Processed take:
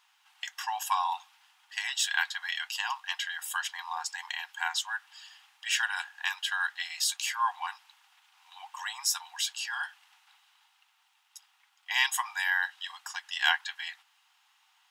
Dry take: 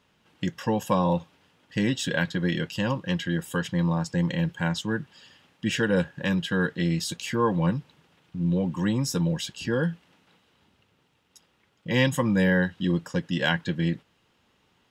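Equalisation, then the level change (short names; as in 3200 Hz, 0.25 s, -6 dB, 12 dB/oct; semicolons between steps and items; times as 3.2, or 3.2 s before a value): brick-wall FIR high-pass 720 Hz; high shelf 5000 Hz +7 dB; 0.0 dB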